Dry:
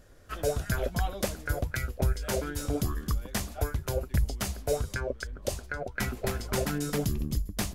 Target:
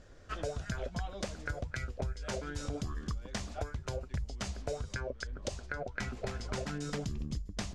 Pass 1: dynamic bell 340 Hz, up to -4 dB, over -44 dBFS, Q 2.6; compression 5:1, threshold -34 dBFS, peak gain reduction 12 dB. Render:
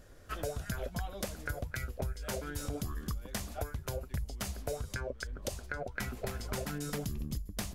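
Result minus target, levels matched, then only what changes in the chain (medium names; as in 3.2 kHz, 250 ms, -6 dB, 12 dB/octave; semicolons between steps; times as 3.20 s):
8 kHz band +3.0 dB
add after dynamic bell: low-pass 7.2 kHz 24 dB/octave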